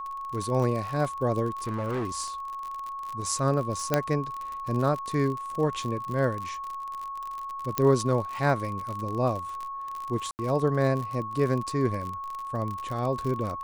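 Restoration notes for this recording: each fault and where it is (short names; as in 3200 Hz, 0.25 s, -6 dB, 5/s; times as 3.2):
crackle 51/s -31 dBFS
tone 1100 Hz -33 dBFS
1.57–2.11 clipped -26 dBFS
3.94 pop -8 dBFS
7.78 pop -9 dBFS
10.31–10.39 gap 79 ms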